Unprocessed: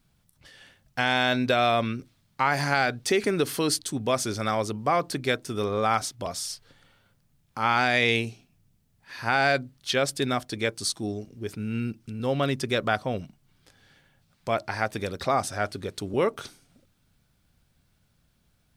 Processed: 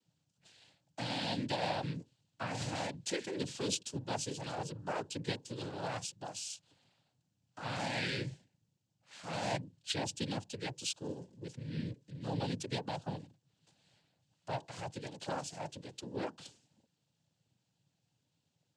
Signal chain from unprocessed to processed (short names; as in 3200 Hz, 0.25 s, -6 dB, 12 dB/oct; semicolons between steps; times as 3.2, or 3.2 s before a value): dynamic EQ 830 Hz, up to -7 dB, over -38 dBFS, Q 1.4; fixed phaser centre 300 Hz, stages 8; noise vocoder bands 8; gain -7 dB